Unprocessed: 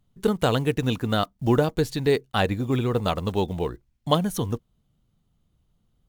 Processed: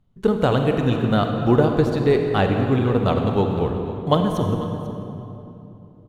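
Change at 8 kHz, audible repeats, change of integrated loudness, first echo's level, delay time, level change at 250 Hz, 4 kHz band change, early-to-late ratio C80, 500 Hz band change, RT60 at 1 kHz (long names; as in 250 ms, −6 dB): can't be measured, 1, +4.5 dB, −16.5 dB, 493 ms, +5.5 dB, −1.5 dB, 4.5 dB, +5.0 dB, 2.7 s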